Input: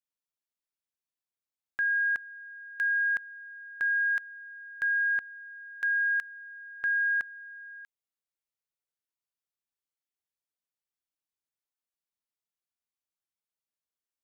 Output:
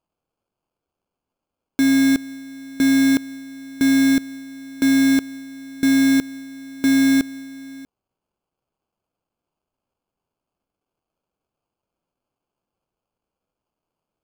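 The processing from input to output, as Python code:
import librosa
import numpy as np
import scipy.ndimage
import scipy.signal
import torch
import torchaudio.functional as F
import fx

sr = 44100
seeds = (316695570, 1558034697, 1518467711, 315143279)

y = fx.dynamic_eq(x, sr, hz=1500.0, q=4.0, threshold_db=-43.0, ratio=4.0, max_db=4)
y = fx.sample_hold(y, sr, seeds[0], rate_hz=1900.0, jitter_pct=0)
y = y * 10.0 ** (9.0 / 20.0)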